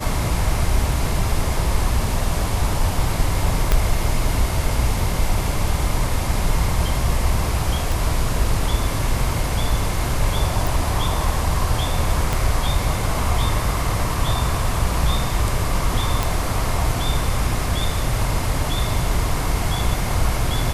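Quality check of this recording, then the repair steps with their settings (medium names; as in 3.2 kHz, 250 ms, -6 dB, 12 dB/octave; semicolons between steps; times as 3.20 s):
3.72 s: pop -3 dBFS
7.92 s: pop
10.67 s: pop
12.33 s: pop
16.23 s: pop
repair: de-click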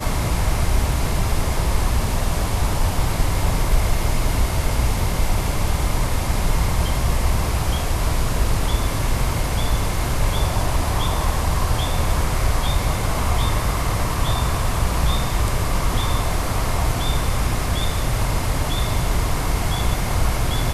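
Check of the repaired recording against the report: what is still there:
3.72 s: pop
7.92 s: pop
12.33 s: pop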